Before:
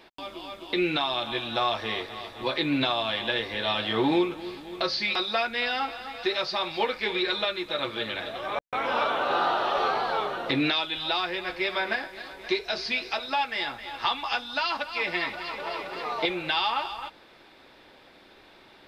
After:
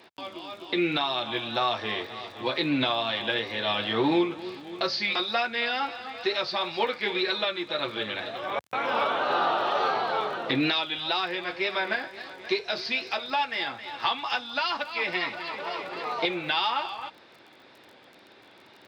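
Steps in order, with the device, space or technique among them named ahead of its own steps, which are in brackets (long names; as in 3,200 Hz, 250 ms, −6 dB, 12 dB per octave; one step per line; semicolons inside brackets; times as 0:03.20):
lo-fi chain (low-pass filter 6,900 Hz 12 dB per octave; tape wow and flutter; surface crackle 30 per second −41 dBFS)
high-pass filter 88 Hz 24 dB per octave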